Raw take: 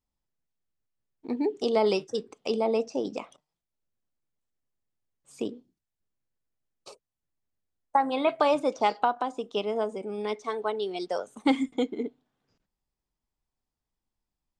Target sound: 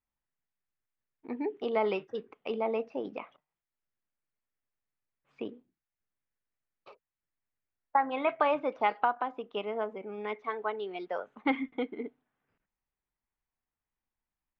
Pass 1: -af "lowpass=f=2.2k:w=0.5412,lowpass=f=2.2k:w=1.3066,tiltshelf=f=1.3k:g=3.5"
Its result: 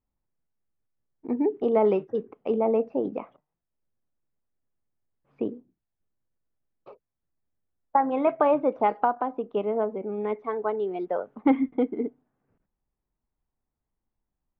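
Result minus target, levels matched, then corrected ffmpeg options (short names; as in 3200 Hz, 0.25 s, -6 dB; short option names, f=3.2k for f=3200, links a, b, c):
1000 Hz band -2.5 dB
-af "lowpass=f=2.2k:w=0.5412,lowpass=f=2.2k:w=1.3066,tiltshelf=f=1.3k:g=-7.5"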